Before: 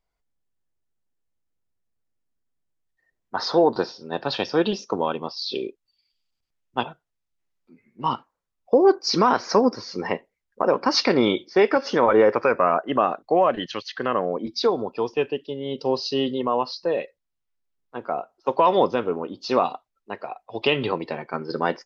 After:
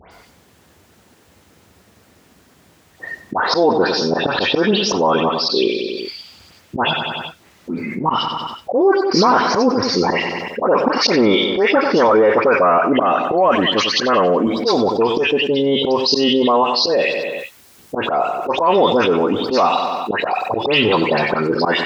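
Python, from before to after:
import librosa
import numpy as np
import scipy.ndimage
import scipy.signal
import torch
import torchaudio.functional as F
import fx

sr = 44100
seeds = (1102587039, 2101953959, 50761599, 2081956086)

y = scipy.signal.sosfilt(scipy.signal.butter(4, 73.0, 'highpass', fs=sr, output='sos'), x)
y = fx.peak_eq(y, sr, hz=130.0, db=-9.5, octaves=0.23)
y = fx.dispersion(y, sr, late='highs', ms=118.0, hz=2300.0)
y = fx.auto_swell(y, sr, attack_ms=138.0)
y = fx.high_shelf(y, sr, hz=5400.0, db=fx.steps((0.0, -7.5), (13.23, 6.0)))
y = fx.echo_feedback(y, sr, ms=94, feedback_pct=45, wet_db=-15.5)
y = fx.env_flatten(y, sr, amount_pct=70)
y = y * 10.0 ** (1.5 / 20.0)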